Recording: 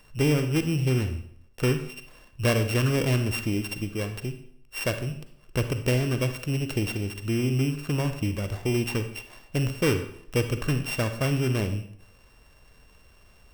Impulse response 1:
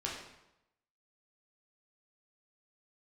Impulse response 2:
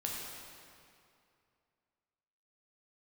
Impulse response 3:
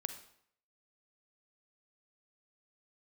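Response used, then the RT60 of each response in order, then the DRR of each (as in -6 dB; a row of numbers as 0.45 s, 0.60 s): 3; 0.90 s, 2.5 s, 0.65 s; -4.0 dB, -3.0 dB, 8.0 dB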